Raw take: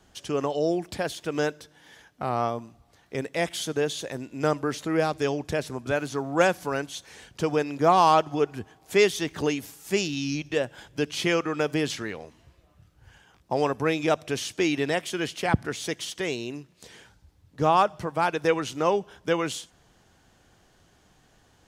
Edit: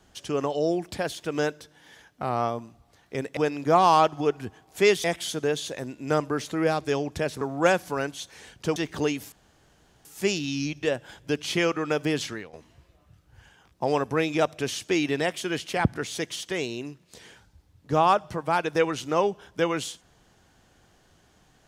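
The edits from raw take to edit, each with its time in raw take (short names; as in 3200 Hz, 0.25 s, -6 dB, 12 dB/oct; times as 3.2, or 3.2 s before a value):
5.74–6.16 cut
7.51–9.18 move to 3.37
9.74 insert room tone 0.73 s
11.97–12.22 fade out, to -13 dB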